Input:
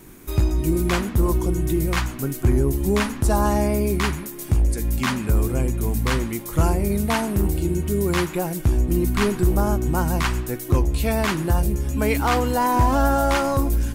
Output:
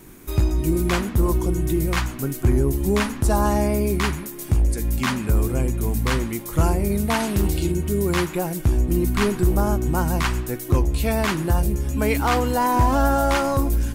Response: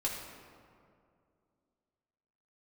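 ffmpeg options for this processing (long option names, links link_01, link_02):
-filter_complex "[0:a]asettb=1/sr,asplit=3[link_01][link_02][link_03];[link_01]atrim=end=7.204[link_04];[link_02]atrim=start=7.2:end=7.72,asetpts=PTS-STARTPTS,afade=type=in:duration=0.004:curve=qsin,afade=type=out:start_time=0.516:duration=0.004:curve=qsin,equalizer=frequency=3800:width=0.7:gain=9.5[link_05];[link_03]atrim=start=7.716[link_06];[link_04][link_05]acrossfade=duration=0.004:curve1=hsin:curve2=qsin[link_07];[link_07][link_06]acrossfade=duration=0.004:curve1=qsin:curve2=hsin"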